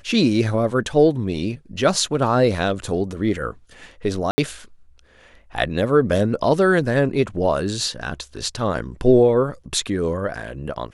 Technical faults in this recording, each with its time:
4.31–4.38 gap 70 ms

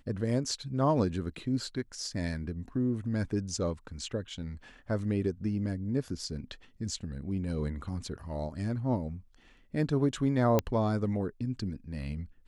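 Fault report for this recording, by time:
10.59 pop -12 dBFS

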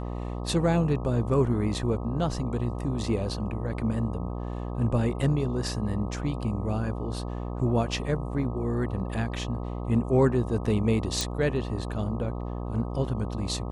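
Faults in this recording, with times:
buzz 60 Hz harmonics 21 -33 dBFS
11.21 pop

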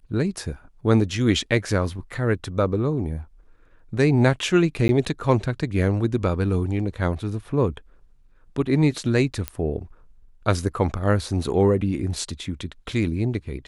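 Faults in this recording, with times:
4.88–4.89 gap 10 ms
9.48 pop -10 dBFS

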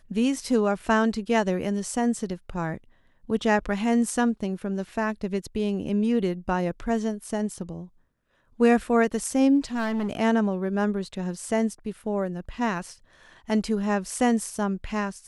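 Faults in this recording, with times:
9.74–10.1 clipped -23.5 dBFS

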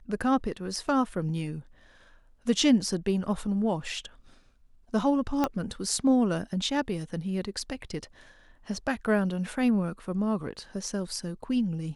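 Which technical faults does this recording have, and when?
0.88 gap 2.1 ms
5.44 pop -12 dBFS

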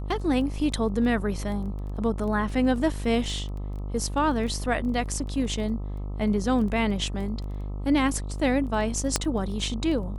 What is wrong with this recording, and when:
buzz 50 Hz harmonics 26 -32 dBFS
crackle 11/s -34 dBFS
9.16 pop -7 dBFS

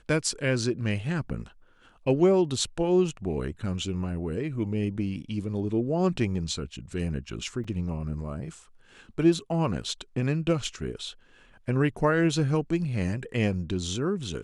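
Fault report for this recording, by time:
7.64 gap 4.7 ms

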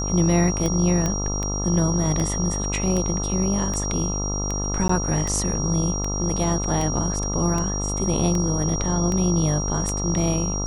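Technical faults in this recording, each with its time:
buzz 50 Hz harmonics 27 -27 dBFS
tick 78 rpm -13 dBFS
tone 5700 Hz -28 dBFS
1.06 pop -11 dBFS
4.88–4.89 gap 14 ms

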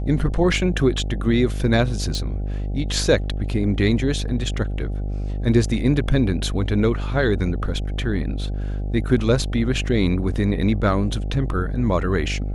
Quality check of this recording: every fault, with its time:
buzz 50 Hz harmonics 16 -25 dBFS
2.15 pop -16 dBFS

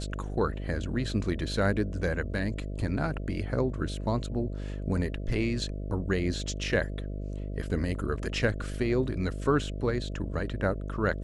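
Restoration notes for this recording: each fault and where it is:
buzz 50 Hz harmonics 13 -35 dBFS

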